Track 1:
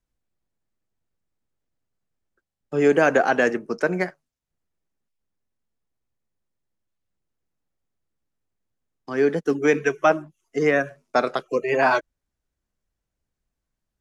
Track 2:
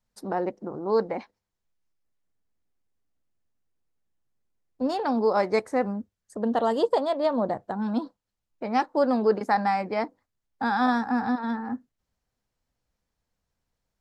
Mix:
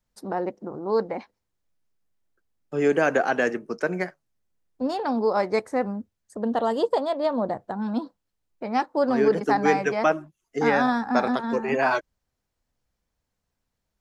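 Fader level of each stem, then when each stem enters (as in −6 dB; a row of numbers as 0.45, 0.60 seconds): −3.5, 0.0 decibels; 0.00, 0.00 seconds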